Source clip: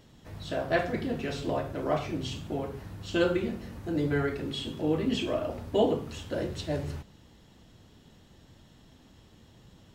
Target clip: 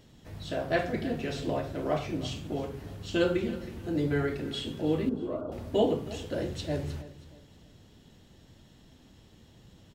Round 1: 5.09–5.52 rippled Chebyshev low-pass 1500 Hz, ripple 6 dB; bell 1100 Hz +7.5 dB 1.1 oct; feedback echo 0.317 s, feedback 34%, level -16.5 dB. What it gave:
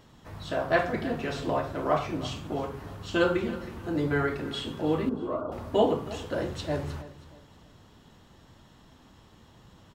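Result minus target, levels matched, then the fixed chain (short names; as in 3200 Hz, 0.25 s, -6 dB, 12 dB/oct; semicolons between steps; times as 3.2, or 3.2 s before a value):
1000 Hz band +4.5 dB
5.09–5.52 rippled Chebyshev low-pass 1500 Hz, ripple 6 dB; bell 1100 Hz -3.5 dB 1.1 oct; feedback echo 0.317 s, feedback 34%, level -16.5 dB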